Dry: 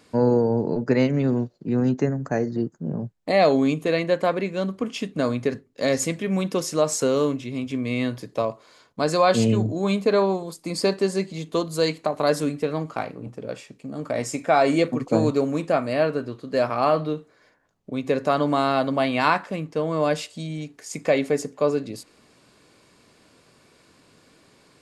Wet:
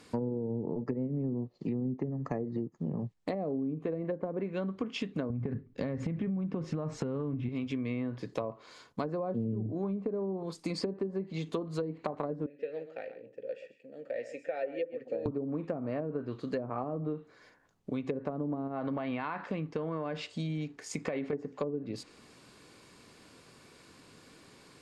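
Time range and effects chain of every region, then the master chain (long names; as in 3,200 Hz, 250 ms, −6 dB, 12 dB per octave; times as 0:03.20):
0:00.51–0:03.14: Butterworth band-reject 1,500 Hz, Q 4.1 + one half of a high-frequency compander encoder only
0:05.30–0:07.49: bass and treble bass +14 dB, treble −10 dB + downward compressor 10 to 1, threshold −20 dBFS
0:12.46–0:15.26: formant filter e + single-tap delay 130 ms −12.5 dB
0:18.67–0:21.33: high-shelf EQ 5,800 Hz −12 dB + downward compressor 12 to 1, threshold −21 dBFS
whole clip: treble cut that deepens with the level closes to 420 Hz, closed at −17 dBFS; parametric band 620 Hz −4.5 dB 0.29 octaves; downward compressor 6 to 1, threshold −31 dBFS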